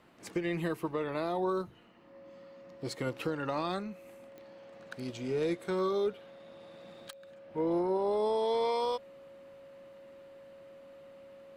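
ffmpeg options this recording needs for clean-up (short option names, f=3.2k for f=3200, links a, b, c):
-af "adeclick=t=4,bandreject=f=550:w=30"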